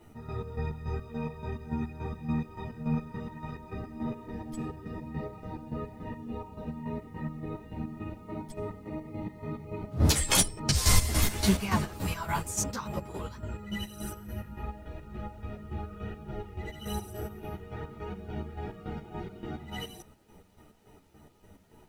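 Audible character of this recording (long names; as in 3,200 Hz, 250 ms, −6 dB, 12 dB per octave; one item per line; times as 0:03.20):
chopped level 3.5 Hz, depth 65%, duty 45%
a quantiser's noise floor 12 bits, dither none
a shimmering, thickened sound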